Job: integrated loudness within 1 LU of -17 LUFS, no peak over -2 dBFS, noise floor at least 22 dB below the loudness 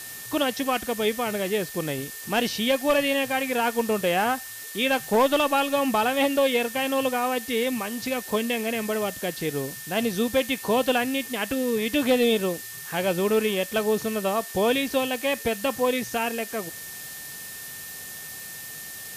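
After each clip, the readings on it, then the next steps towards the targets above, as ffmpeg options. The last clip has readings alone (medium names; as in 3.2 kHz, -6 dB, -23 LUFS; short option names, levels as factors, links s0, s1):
steady tone 1.8 kHz; tone level -43 dBFS; noise floor -39 dBFS; noise floor target -47 dBFS; loudness -25.0 LUFS; peak level -12.0 dBFS; loudness target -17.0 LUFS
-> -af "bandreject=f=1800:w=30"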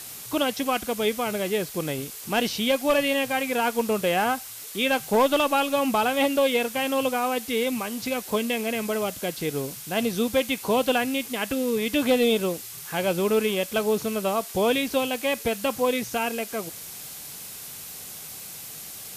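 steady tone not found; noise floor -40 dBFS; noise floor target -47 dBFS
-> -af "afftdn=nr=7:nf=-40"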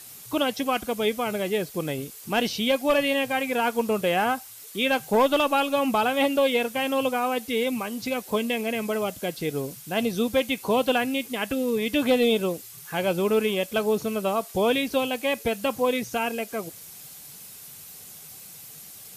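noise floor -44 dBFS; noise floor target -47 dBFS
-> -af "afftdn=nr=6:nf=-44"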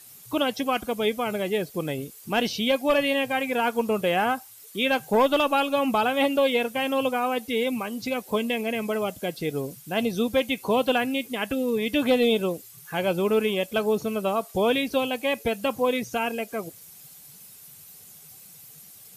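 noise floor -48 dBFS; loudness -25.0 LUFS; peak level -12.0 dBFS; loudness target -17.0 LUFS
-> -af "volume=2.51"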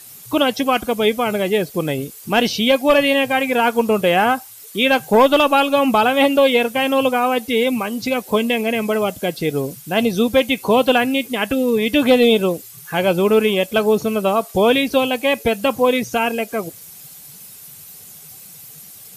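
loudness -17.0 LUFS; peak level -4.0 dBFS; noise floor -40 dBFS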